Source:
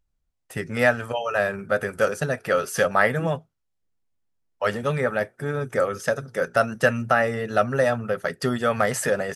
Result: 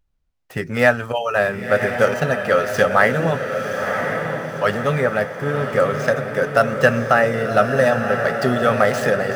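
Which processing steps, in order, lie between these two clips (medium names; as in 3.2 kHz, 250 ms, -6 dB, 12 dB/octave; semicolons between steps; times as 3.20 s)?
median filter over 5 samples; echo that smears into a reverb 1049 ms, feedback 51%, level -5.5 dB; trim +4.5 dB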